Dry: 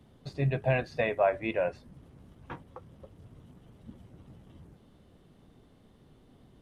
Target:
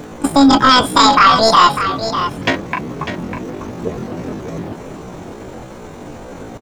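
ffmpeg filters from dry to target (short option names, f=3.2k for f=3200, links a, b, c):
-filter_complex "[0:a]highshelf=f=5.2k:g=-5.5,apsyclip=30.5dB,asetrate=88200,aresample=44100,atempo=0.5,asplit=2[a][b];[b]aecho=0:1:599:0.335[c];[a][c]amix=inputs=2:normalize=0,volume=-4dB"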